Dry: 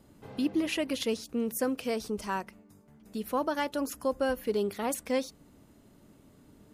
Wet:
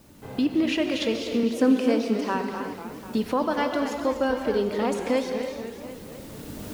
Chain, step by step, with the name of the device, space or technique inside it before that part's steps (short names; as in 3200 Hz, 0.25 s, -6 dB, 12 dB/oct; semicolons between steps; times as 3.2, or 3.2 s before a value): LPF 5100 Hz 12 dB/oct; 1.43–2.35 resonant low shelf 170 Hz -14 dB, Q 3; non-linear reverb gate 0.36 s flat, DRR 6 dB; cheap recorder with automatic gain (white noise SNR 34 dB; recorder AGC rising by 10 dB/s); warbling echo 0.248 s, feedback 63%, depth 219 cents, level -10.5 dB; gain +4 dB